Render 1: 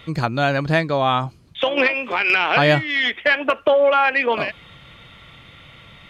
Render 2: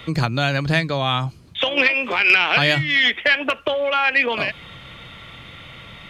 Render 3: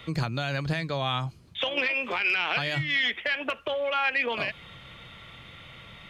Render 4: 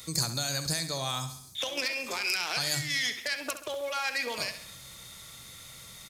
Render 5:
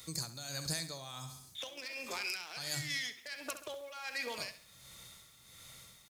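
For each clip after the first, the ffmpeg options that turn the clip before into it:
ffmpeg -i in.wav -filter_complex "[0:a]bandreject=frequency=50:width_type=h:width=6,bandreject=frequency=100:width_type=h:width=6,bandreject=frequency=150:width_type=h:width=6,acrossover=split=160|2000[link_01][link_02][link_03];[link_02]acompressor=threshold=-28dB:ratio=4[link_04];[link_01][link_04][link_03]amix=inputs=3:normalize=0,volume=5dB" out.wav
ffmpeg -i in.wav -af "equalizer=frequency=280:width=4.9:gain=-3,alimiter=limit=-9.5dB:level=0:latency=1:release=45,volume=-7dB" out.wav
ffmpeg -i in.wav -filter_complex "[0:a]aexciter=amount=10.9:drive=9.5:freq=4700,asplit=2[link_01][link_02];[link_02]aecho=0:1:67|134|201|268|335:0.282|0.144|0.0733|0.0374|0.0191[link_03];[link_01][link_03]amix=inputs=2:normalize=0,volume=-6dB" out.wav
ffmpeg -i in.wav -af "tremolo=f=1.4:d=0.65,acrusher=bits=9:mix=0:aa=0.000001,volume=-6dB" out.wav

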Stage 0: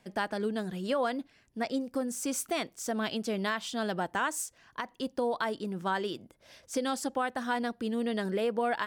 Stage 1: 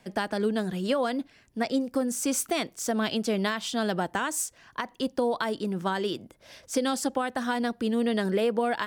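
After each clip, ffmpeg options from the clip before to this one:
ffmpeg -i in.wav -filter_complex "[0:a]acrossover=split=430|3000[link_01][link_02][link_03];[link_02]acompressor=threshold=-32dB:ratio=6[link_04];[link_01][link_04][link_03]amix=inputs=3:normalize=0,volume=5.5dB" out.wav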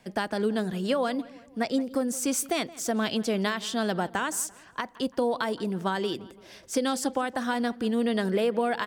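ffmpeg -i in.wav -filter_complex "[0:a]asplit=2[link_01][link_02];[link_02]adelay=170,lowpass=frequency=3000:poles=1,volume=-19dB,asplit=2[link_03][link_04];[link_04]adelay=170,lowpass=frequency=3000:poles=1,volume=0.47,asplit=2[link_05][link_06];[link_06]adelay=170,lowpass=frequency=3000:poles=1,volume=0.47,asplit=2[link_07][link_08];[link_08]adelay=170,lowpass=frequency=3000:poles=1,volume=0.47[link_09];[link_01][link_03][link_05][link_07][link_09]amix=inputs=5:normalize=0" out.wav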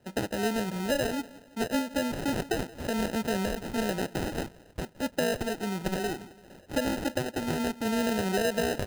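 ffmpeg -i in.wav -af "acrusher=samples=39:mix=1:aa=0.000001,volume=-2dB" out.wav

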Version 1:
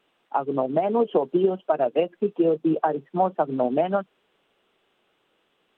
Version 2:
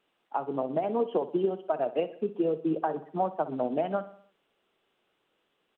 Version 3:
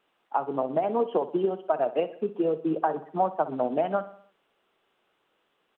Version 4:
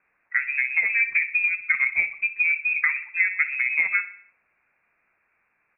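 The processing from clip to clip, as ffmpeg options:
ffmpeg -i in.wav -af "aecho=1:1:62|124|186|248|310:0.178|0.0907|0.0463|0.0236|0.012,volume=-6.5dB" out.wav
ffmpeg -i in.wav -af "equalizer=frequency=1100:width=0.64:gain=5" out.wav
ffmpeg -i in.wav -af "bandreject=frequency=63.19:width_type=h:width=4,bandreject=frequency=126.38:width_type=h:width=4,bandreject=frequency=189.57:width_type=h:width=4,bandreject=frequency=252.76:width_type=h:width=4,bandreject=frequency=315.95:width_type=h:width=4,bandreject=frequency=379.14:width_type=h:width=4,bandreject=frequency=442.33:width_type=h:width=4,bandreject=frequency=505.52:width_type=h:width=4,bandreject=frequency=568.71:width_type=h:width=4,bandreject=frequency=631.9:width_type=h:width=4,bandreject=frequency=695.09:width_type=h:width=4,bandreject=frequency=758.28:width_type=h:width=4,bandreject=frequency=821.47:width_type=h:width=4,bandreject=frequency=884.66:width_type=h:width=4,bandreject=frequency=947.85:width_type=h:width=4,bandreject=frequency=1011.04:width_type=h:width=4,lowpass=frequency=2400:width_type=q:width=0.5098,lowpass=frequency=2400:width_type=q:width=0.6013,lowpass=frequency=2400:width_type=q:width=0.9,lowpass=frequency=2400:width_type=q:width=2.563,afreqshift=-2800,volume=3.5dB" out.wav

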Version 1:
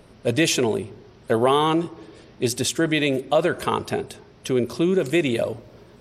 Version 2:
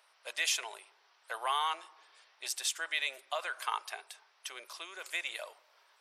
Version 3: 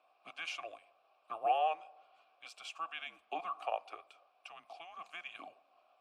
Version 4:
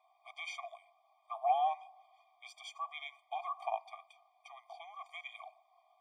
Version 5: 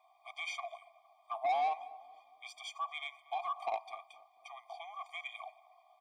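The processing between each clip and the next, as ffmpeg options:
ffmpeg -i in.wav -af "highpass=frequency=880:width=0.5412,highpass=frequency=880:width=1.3066,volume=-8dB" out.wav
ffmpeg -i in.wav -filter_complex "[0:a]afreqshift=-330,asplit=3[link_01][link_02][link_03];[link_01]bandpass=frequency=730:width_type=q:width=8,volume=0dB[link_04];[link_02]bandpass=frequency=1090:width_type=q:width=8,volume=-6dB[link_05];[link_03]bandpass=frequency=2440:width_type=q:width=8,volume=-9dB[link_06];[link_04][link_05][link_06]amix=inputs=3:normalize=0,volume=6.5dB" out.wav
ffmpeg -i in.wav -af "afftfilt=real='re*eq(mod(floor(b*sr/1024/620),2),1)':imag='im*eq(mod(floor(b*sr/1024/620),2),1)':win_size=1024:overlap=0.75,volume=1dB" out.wav
ffmpeg -i in.wav -filter_complex "[0:a]asoftclip=type=tanh:threshold=-31dB,asplit=2[link_01][link_02];[link_02]adelay=231,lowpass=frequency=1200:poles=1,volume=-17.5dB,asplit=2[link_03][link_04];[link_04]adelay=231,lowpass=frequency=1200:poles=1,volume=0.5,asplit=2[link_05][link_06];[link_06]adelay=231,lowpass=frequency=1200:poles=1,volume=0.5,asplit=2[link_07][link_08];[link_08]adelay=231,lowpass=frequency=1200:poles=1,volume=0.5[link_09];[link_01][link_03][link_05][link_07][link_09]amix=inputs=5:normalize=0,volume=3.5dB" out.wav

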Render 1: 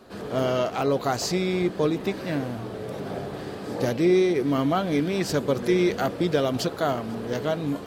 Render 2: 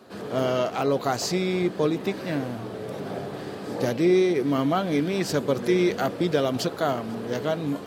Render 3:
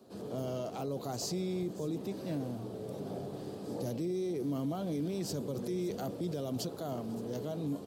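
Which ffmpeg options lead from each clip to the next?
ffmpeg -i in.wav -af "highpass=100" out.wav
ffmpeg -i in.wav -filter_complex "[0:a]equalizer=frequency=1800:width=0.77:gain=-14.5,acrossover=split=140|6500[link_01][link_02][link_03];[link_02]alimiter=level_in=0.5dB:limit=-24dB:level=0:latency=1:release=21,volume=-0.5dB[link_04];[link_03]aecho=1:1:568:0.224[link_05];[link_01][link_04][link_05]amix=inputs=3:normalize=0,volume=-5.5dB" out.wav

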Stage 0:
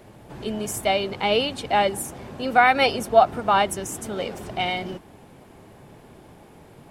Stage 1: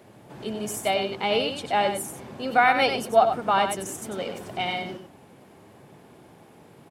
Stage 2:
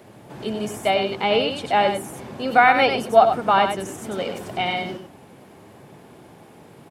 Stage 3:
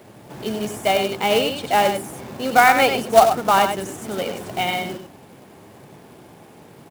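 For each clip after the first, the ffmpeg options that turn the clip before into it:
ffmpeg -i in.wav -filter_complex "[0:a]highpass=110,asplit=2[link_01][link_02];[link_02]aecho=0:1:95:0.422[link_03];[link_01][link_03]amix=inputs=2:normalize=0,volume=-3dB" out.wav
ffmpeg -i in.wav -filter_complex "[0:a]acrossover=split=3600[link_01][link_02];[link_02]acompressor=threshold=-42dB:ratio=4:attack=1:release=60[link_03];[link_01][link_03]amix=inputs=2:normalize=0,volume=4.5dB" out.wav
ffmpeg -i in.wav -af "acrusher=bits=3:mode=log:mix=0:aa=0.000001,volume=1dB" out.wav

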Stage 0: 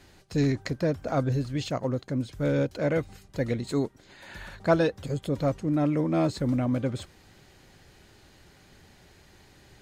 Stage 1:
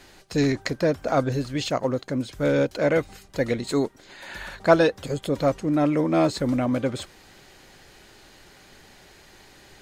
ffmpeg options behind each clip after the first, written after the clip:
ffmpeg -i in.wav -af "equalizer=frequency=91:width=0.47:gain=-9.5,volume=7dB" out.wav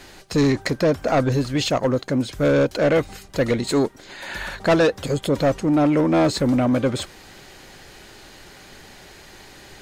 ffmpeg -i in.wav -af "asoftclip=type=tanh:threshold=-18.5dB,volume=6.5dB" out.wav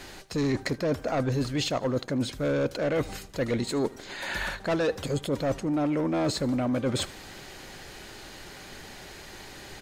ffmpeg -i in.wav -af "areverse,acompressor=threshold=-25dB:ratio=6,areverse,aecho=1:1:77|154|231|308:0.0794|0.0413|0.0215|0.0112" out.wav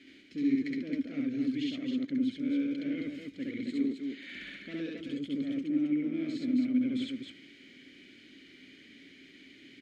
ffmpeg -i in.wav -filter_complex "[0:a]asplit=3[link_01][link_02][link_03];[link_01]bandpass=frequency=270:width_type=q:width=8,volume=0dB[link_04];[link_02]bandpass=frequency=2290:width_type=q:width=8,volume=-6dB[link_05];[link_03]bandpass=frequency=3010:width_type=q:width=8,volume=-9dB[link_06];[link_04][link_05][link_06]amix=inputs=3:normalize=0,aecho=1:1:67.06|268.2:1|0.631" out.wav

